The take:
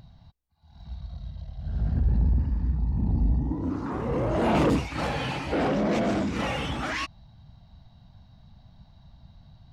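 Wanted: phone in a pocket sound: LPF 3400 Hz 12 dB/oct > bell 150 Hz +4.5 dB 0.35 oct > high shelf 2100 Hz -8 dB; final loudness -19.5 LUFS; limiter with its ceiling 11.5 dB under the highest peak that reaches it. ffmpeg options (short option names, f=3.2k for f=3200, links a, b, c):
-af "alimiter=level_in=1dB:limit=-24dB:level=0:latency=1,volume=-1dB,lowpass=3.4k,equalizer=f=150:t=o:w=0.35:g=4.5,highshelf=f=2.1k:g=-8,volume=14dB"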